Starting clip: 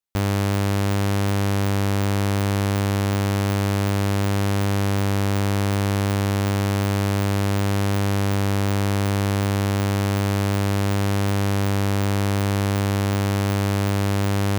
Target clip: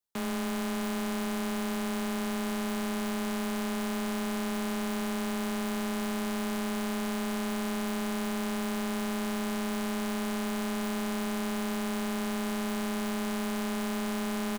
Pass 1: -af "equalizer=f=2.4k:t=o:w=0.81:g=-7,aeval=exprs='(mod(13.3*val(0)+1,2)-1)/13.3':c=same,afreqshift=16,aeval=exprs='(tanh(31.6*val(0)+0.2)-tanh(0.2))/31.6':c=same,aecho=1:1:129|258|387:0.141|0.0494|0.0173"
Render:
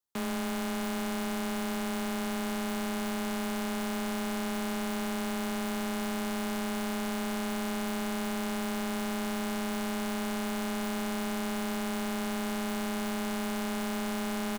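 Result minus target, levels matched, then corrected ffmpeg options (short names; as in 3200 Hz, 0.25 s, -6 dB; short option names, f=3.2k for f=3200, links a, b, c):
echo 45 ms late
-af "equalizer=f=2.4k:t=o:w=0.81:g=-7,aeval=exprs='(mod(13.3*val(0)+1,2)-1)/13.3':c=same,afreqshift=16,aeval=exprs='(tanh(31.6*val(0)+0.2)-tanh(0.2))/31.6':c=same,aecho=1:1:84|168|252:0.141|0.0494|0.0173"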